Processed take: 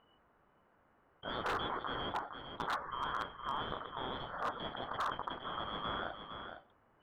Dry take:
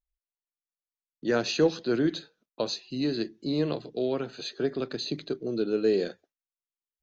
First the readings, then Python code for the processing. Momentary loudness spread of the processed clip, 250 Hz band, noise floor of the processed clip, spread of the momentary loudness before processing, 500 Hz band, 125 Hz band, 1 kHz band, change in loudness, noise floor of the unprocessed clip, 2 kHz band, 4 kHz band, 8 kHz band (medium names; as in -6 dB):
9 LU, -20.0 dB, -71 dBFS, 8 LU, -17.0 dB, -13.0 dB, +6.0 dB, -10.5 dB, under -85 dBFS, -3.0 dB, -7.0 dB, no reading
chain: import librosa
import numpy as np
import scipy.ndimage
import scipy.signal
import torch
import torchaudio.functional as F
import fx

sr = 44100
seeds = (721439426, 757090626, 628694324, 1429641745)

y = fx.band_shuffle(x, sr, order='3412')
y = fx.mod_noise(y, sr, seeds[0], snr_db=14)
y = scipy.signal.sosfilt(scipy.signal.butter(4, 1400.0, 'lowpass', fs=sr, output='sos'), y)
y = y + 10.0 ** (-15.5 / 20.0) * np.pad(y, (int(462 * sr / 1000.0), 0))[:len(y)]
y = 10.0 ** (-31.5 / 20.0) * (np.abs((y / 10.0 ** (-31.5 / 20.0) + 3.0) % 4.0 - 2.0) - 1.0)
y = fx.env_flatten(y, sr, amount_pct=50)
y = y * 10.0 ** (2.0 / 20.0)